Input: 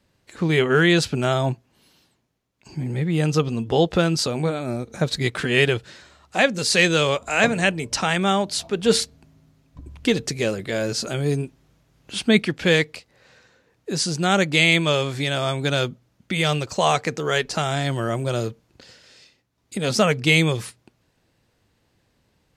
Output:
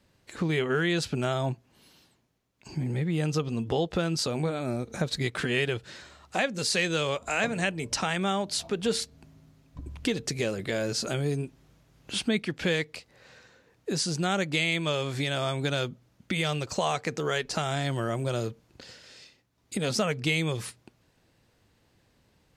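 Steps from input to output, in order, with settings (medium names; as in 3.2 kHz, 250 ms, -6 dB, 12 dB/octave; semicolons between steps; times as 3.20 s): compression 2.5:1, threshold -28 dBFS, peak gain reduction 11.5 dB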